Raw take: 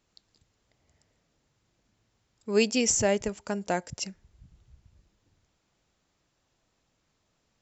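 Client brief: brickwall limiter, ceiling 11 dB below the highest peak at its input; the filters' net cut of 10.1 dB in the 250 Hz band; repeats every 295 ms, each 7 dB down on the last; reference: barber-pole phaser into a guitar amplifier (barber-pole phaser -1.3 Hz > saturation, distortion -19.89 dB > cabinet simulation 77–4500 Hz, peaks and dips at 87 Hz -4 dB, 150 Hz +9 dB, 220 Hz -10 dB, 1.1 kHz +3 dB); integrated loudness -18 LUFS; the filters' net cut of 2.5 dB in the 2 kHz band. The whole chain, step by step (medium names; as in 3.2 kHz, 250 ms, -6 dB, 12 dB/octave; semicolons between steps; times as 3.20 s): peaking EQ 250 Hz -6.5 dB; peaking EQ 2 kHz -3.5 dB; peak limiter -23.5 dBFS; feedback delay 295 ms, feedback 45%, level -7 dB; barber-pole phaser -1.3 Hz; saturation -26.5 dBFS; cabinet simulation 77–4500 Hz, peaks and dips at 87 Hz -4 dB, 150 Hz +9 dB, 220 Hz -10 dB, 1.1 kHz +3 dB; trim +23 dB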